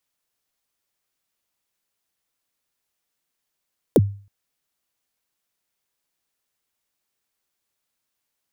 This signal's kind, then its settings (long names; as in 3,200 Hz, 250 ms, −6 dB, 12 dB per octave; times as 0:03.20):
synth kick length 0.32 s, from 570 Hz, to 100 Hz, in 38 ms, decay 0.41 s, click on, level −7.5 dB